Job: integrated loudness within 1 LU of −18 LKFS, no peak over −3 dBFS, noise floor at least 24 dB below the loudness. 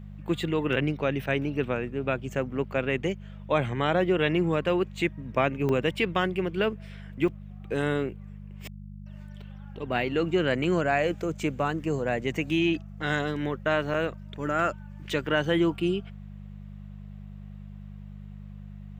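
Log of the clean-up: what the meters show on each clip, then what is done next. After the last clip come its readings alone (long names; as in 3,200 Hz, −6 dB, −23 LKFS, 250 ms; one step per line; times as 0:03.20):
number of dropouts 5; longest dropout 3.1 ms; mains hum 50 Hz; hum harmonics up to 200 Hz; level of the hum −40 dBFS; integrated loudness −27.5 LKFS; sample peak −9.0 dBFS; target loudness −18.0 LKFS
→ repair the gap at 0:05.69/0:07.28/0:10.64/0:12.37/0:13.94, 3.1 ms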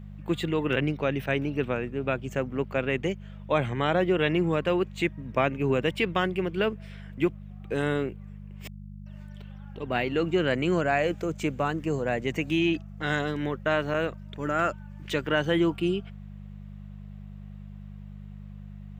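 number of dropouts 0; mains hum 50 Hz; hum harmonics up to 200 Hz; level of the hum −40 dBFS
→ hum removal 50 Hz, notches 4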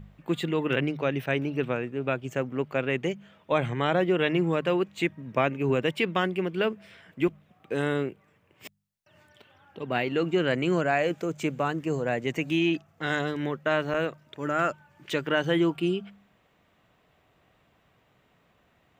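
mains hum none found; integrated loudness −28.0 LKFS; sample peak −9.5 dBFS; target loudness −18.0 LKFS
→ level +10 dB
brickwall limiter −3 dBFS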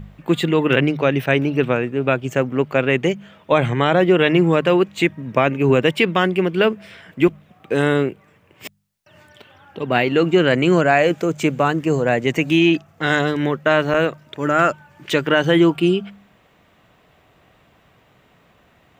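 integrated loudness −18.0 LKFS; sample peak −3.0 dBFS; background noise floor −56 dBFS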